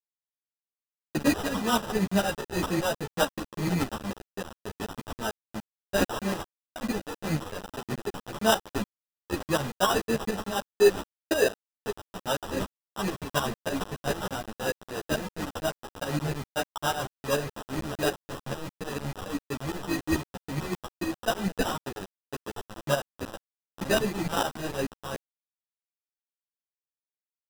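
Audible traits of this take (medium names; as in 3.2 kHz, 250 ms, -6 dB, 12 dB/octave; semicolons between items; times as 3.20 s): aliases and images of a low sample rate 2.2 kHz, jitter 0%; tremolo saw up 6.8 Hz, depth 85%; a quantiser's noise floor 6-bit, dither none; a shimmering, thickened sound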